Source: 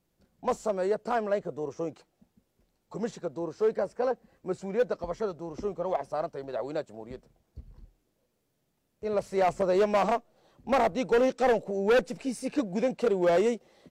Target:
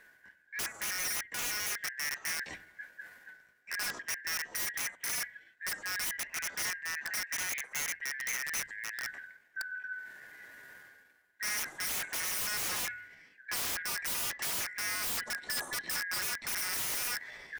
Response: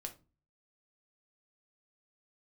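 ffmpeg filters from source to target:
-filter_complex "[0:a]afftfilt=real='real(if(lt(b,272),68*(eq(floor(b/68),0)*3+eq(floor(b/68),1)*0+eq(floor(b/68),2)*1+eq(floor(b/68),3)*2)+mod(b,68),b),0)':imag='imag(if(lt(b,272),68*(eq(floor(b/68),0)*3+eq(floor(b/68),1)*0+eq(floor(b/68),2)*1+eq(floor(b/68),3)*2)+mod(b,68),b),0)':win_size=2048:overlap=0.75,acrossover=split=180|1300[a][b][c];[a]bandreject=f=49.47:t=h:w=4,bandreject=f=98.94:t=h:w=4,bandreject=f=148.41:t=h:w=4,bandreject=f=197.88:t=h:w=4,bandreject=f=247.35:t=h:w=4,bandreject=f=296.82:t=h:w=4,bandreject=f=346.29:t=h:w=4[d];[b]acontrast=75[e];[d][e][c]amix=inputs=3:normalize=0,highshelf=f=2.9k:g=-11.5,atempo=0.79,areverse,acompressor=mode=upward:threshold=-32dB:ratio=2.5,areverse,highshelf=f=6.9k:g=7,asplit=2[f][g];[g]adelay=67,lowpass=f=940:p=1,volume=-15dB,asplit=2[h][i];[i]adelay=67,lowpass=f=940:p=1,volume=0.47,asplit=2[j][k];[k]adelay=67,lowpass=f=940:p=1,volume=0.47,asplit=2[l][m];[m]adelay=67,lowpass=f=940:p=1,volume=0.47[n];[f][h][j][l][n]amix=inputs=5:normalize=0,aeval=exprs='(mod(29.9*val(0)+1,2)-1)/29.9':c=same"

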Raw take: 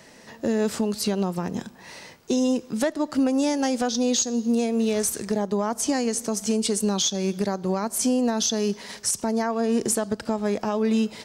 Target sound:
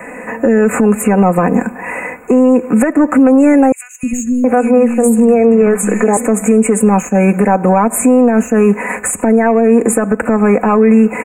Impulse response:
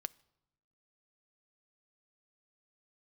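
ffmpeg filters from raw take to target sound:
-filter_complex "[0:a]bass=f=250:g=-8,treble=f=4k:g=-4,asoftclip=type=tanh:threshold=-16dB,acrossover=split=370[a][b];[b]acompressor=threshold=-27dB:ratio=6[c];[a][c]amix=inputs=2:normalize=0,aecho=1:1:4:0.64,asettb=1/sr,asplit=3[d][e][f];[d]atrim=end=3.724[g];[e]atrim=start=3.72:end=6.17,asetpts=PTS-STARTPTS,afade=t=in:d=0.004:c=qsin,afade=t=out:st=2.446:d=0.004:c=qsin,acrossover=split=200|2800[h][i][j];[h]adelay=310[k];[i]adelay=720[l];[k][l][j]amix=inputs=3:normalize=0,atrim=end_sample=108045[m];[f]atrim=start=6.166[n];[g][m]acrossfade=d=0.004:c1=hsin:c2=qsin[o];[o][n]acrossfade=d=0.004:c1=qsin:c2=hsin,acompressor=threshold=-25dB:ratio=6,asuperstop=centerf=4300:order=20:qfactor=1,highshelf=f=5.7k:g=-9.5,alimiter=level_in=23dB:limit=-1dB:release=50:level=0:latency=1,volume=-1dB"

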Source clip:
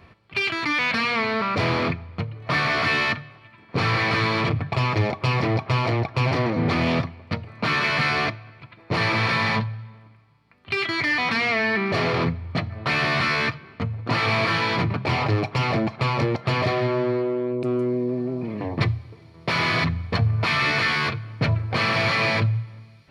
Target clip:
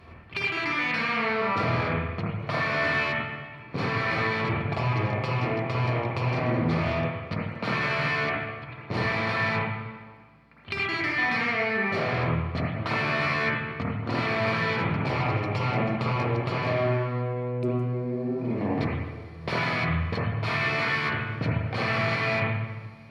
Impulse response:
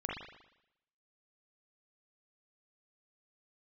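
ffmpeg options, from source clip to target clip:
-filter_complex "[0:a]acompressor=threshold=-28dB:ratio=6[a];[1:a]atrim=start_sample=2205,asetrate=34839,aresample=44100[b];[a][b]afir=irnorm=-1:irlink=0"

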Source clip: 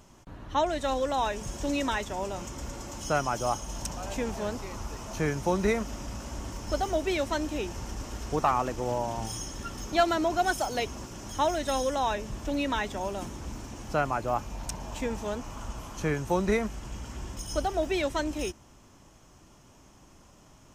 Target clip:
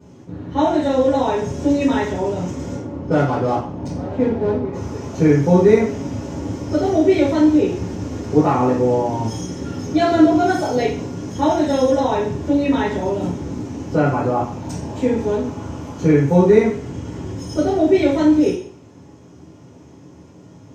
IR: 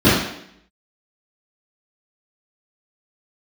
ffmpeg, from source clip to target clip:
-filter_complex "[0:a]asettb=1/sr,asplit=3[a][b][c];[a]atrim=end=2.754[d];[b]atrim=start=2.75:end=4.73,asetpts=PTS-STARTPTS,afade=t=in:d=0.004:c=qsin,afade=t=out:st=1.976:d=0.004:c=qsin,adynamicsmooth=sensitivity=5:basefreq=740[e];[c]atrim=start=4.726[f];[d][e]acrossfade=d=0.004:c1=hsin:c2=qsin[g];[g][f]acrossfade=d=0.004:c1=qsin:c2=hsin[h];[1:a]atrim=start_sample=2205,asetrate=61740,aresample=44100[i];[h][i]afir=irnorm=-1:irlink=0,volume=-17.5dB"

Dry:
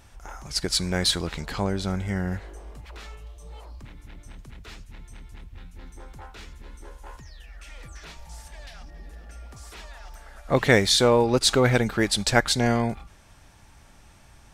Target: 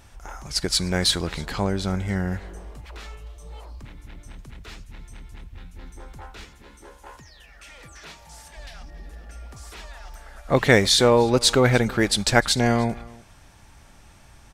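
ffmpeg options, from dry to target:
-filter_complex "[0:a]asettb=1/sr,asplit=3[a][b][c];[a]atrim=end=6.444[d];[b]atrim=start=6.44:end=8.57,asetpts=PTS-STARTPTS,afade=t=in:d=0.004:c=qsin,afade=t=out:st=2.126:d=0.004:c=qsin,highpass=f=150:p=1[e];[c]atrim=start=8.566[f];[d][e]acrossfade=d=0.004:c1=hsin:c2=qsin[g];[g][f]acrossfade=d=0.004:c1=qsin:c2=hsin,aecho=1:1:302:0.0708,volume=2dB"

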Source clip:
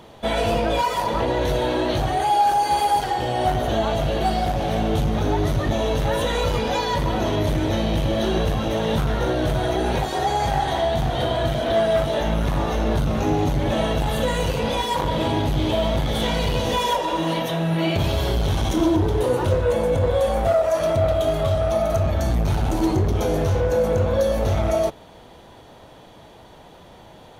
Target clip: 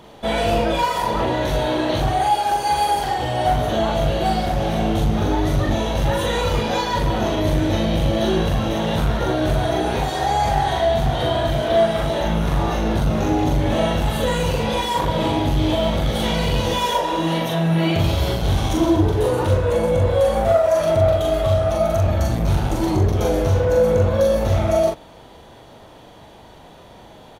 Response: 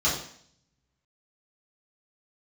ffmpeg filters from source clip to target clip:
-filter_complex "[0:a]asplit=2[a][b];[b]adelay=42,volume=-2.5dB[c];[a][c]amix=inputs=2:normalize=0"

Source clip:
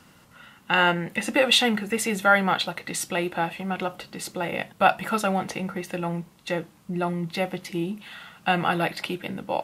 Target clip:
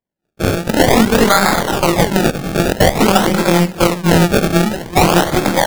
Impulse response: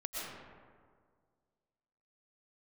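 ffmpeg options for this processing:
-filter_complex "[0:a]afftfilt=real='re':imag='-im':win_size=4096:overlap=0.75,highpass=87,asplit=2[a][b];[b]aecho=0:1:96|192|288:0.251|0.0553|0.0122[c];[a][c]amix=inputs=2:normalize=0,aeval=exprs='0.335*(cos(1*acos(clip(val(0)/0.335,-1,1)))-cos(1*PI/2))+0.0299*(cos(4*acos(clip(val(0)/0.335,-1,1)))-cos(4*PI/2))+0.0841*(cos(5*acos(clip(val(0)/0.335,-1,1)))-cos(5*PI/2))+0.0841*(cos(7*acos(clip(val(0)/0.335,-1,1)))-cos(7*PI/2))+0.00531*(cos(8*acos(clip(val(0)/0.335,-1,1)))-cos(8*PI/2))':c=same,acrossover=split=150|3800[d][e][f];[d]acompressor=threshold=-47dB:ratio=4[g];[e]acompressor=threshold=-27dB:ratio=4[h];[f]acompressor=threshold=-40dB:ratio=4[i];[g][h][i]amix=inputs=3:normalize=0,bandreject=f=50:t=h:w=6,bandreject=f=100:t=h:w=6,bandreject=f=150:t=h:w=6,bandreject=f=200:t=h:w=6,bandreject=f=250:t=h:w=6,atempo=1.7,asplit=2[j][k];[k]aecho=0:1:371:0.168[l];[j][l]amix=inputs=2:normalize=0,dynaudnorm=f=550:g=3:m=16dB,acrusher=samples=30:mix=1:aa=0.000001:lfo=1:lforange=30:lforate=0.5,agate=range=-33dB:threshold=-40dB:ratio=3:detection=peak,alimiter=level_in=13dB:limit=-1dB:release=50:level=0:latency=1,volume=-1dB"

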